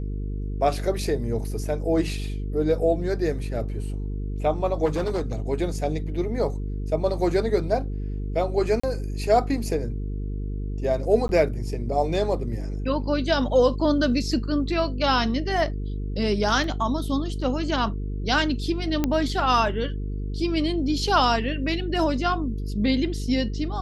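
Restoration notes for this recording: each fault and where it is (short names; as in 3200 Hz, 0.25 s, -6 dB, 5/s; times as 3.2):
buzz 50 Hz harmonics 9 -29 dBFS
4.85–5.4 clipped -21 dBFS
8.8–8.84 gap 35 ms
11.28–11.29 gap 11 ms
16.64 gap 2 ms
19.04 pop -9 dBFS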